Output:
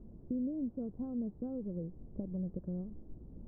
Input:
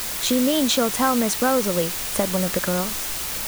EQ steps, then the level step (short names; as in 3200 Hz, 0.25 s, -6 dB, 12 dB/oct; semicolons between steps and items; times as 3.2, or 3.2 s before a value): dynamic EQ 240 Hz, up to -6 dB, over -34 dBFS, Q 1.2; ladder low-pass 370 Hz, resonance 20%; air absorption 430 m; -3.5 dB